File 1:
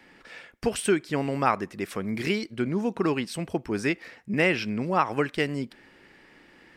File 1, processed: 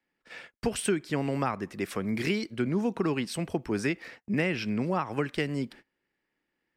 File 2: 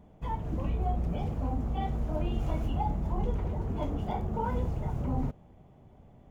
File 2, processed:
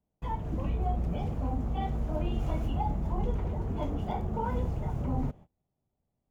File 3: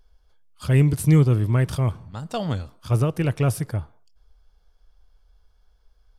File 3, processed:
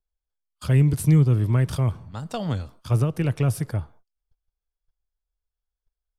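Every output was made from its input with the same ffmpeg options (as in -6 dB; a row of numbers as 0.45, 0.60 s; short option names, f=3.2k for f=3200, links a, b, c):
-filter_complex "[0:a]agate=range=-27dB:threshold=-47dB:ratio=16:detection=peak,acrossover=split=240[a][b];[b]acompressor=threshold=-27dB:ratio=4[c];[a][c]amix=inputs=2:normalize=0"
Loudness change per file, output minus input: -3.0, 0.0, -0.5 LU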